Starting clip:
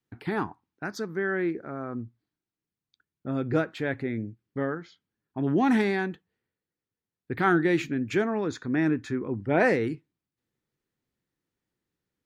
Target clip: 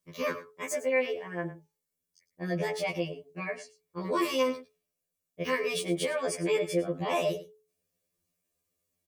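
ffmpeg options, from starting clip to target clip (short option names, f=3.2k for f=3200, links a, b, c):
-filter_complex "[0:a]bass=f=250:g=1,treble=f=4k:g=14,aecho=1:1:2.4:0.45,bandreject=f=318:t=h:w=4,bandreject=f=636:t=h:w=4,bandreject=f=954:t=h:w=4,alimiter=limit=-19dB:level=0:latency=1,asplit=2[a][b];[b]aecho=0:1:142:0.168[c];[a][c]amix=inputs=2:normalize=0,asetrate=59535,aresample=44100,afftfilt=real='re*2*eq(mod(b,4),0)':imag='im*2*eq(mod(b,4),0)':win_size=2048:overlap=0.75"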